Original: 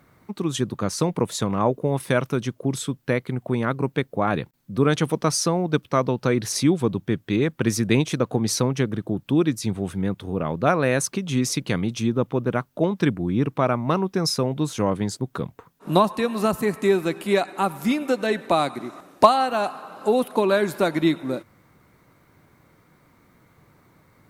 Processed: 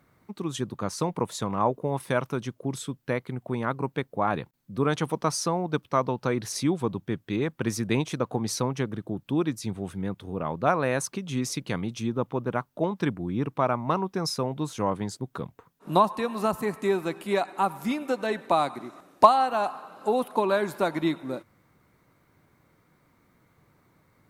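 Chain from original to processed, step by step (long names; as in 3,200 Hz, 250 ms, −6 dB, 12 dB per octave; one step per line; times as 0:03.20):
dynamic equaliser 930 Hz, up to +7 dB, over −37 dBFS, Q 1.5
level −6.5 dB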